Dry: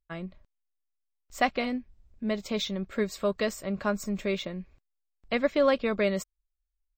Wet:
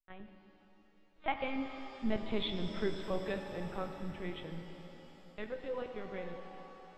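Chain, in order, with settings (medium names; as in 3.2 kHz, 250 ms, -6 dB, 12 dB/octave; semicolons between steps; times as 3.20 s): block-companded coder 5-bit; Doppler pass-by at 2.15 s, 36 m/s, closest 23 m; dynamic bell 150 Hz, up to +6 dB, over -54 dBFS, Q 2.5; in parallel at -1 dB: compression, threshold -37 dBFS, peak gain reduction 13 dB; on the sum: LPC vocoder at 8 kHz pitch kept; pitch-shifted reverb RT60 3.6 s, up +7 st, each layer -8 dB, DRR 5.5 dB; trim -6 dB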